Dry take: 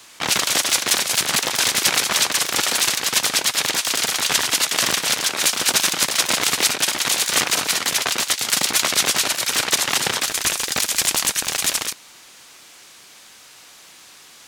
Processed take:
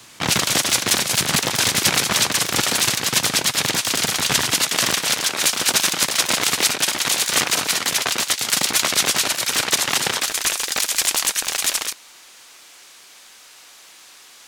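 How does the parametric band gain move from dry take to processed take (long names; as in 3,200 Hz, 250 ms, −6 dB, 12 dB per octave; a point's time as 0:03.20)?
parametric band 120 Hz 2.3 octaves
0:04.53 +11 dB
0:04.96 +2 dB
0:09.94 +2 dB
0:10.55 −9.5 dB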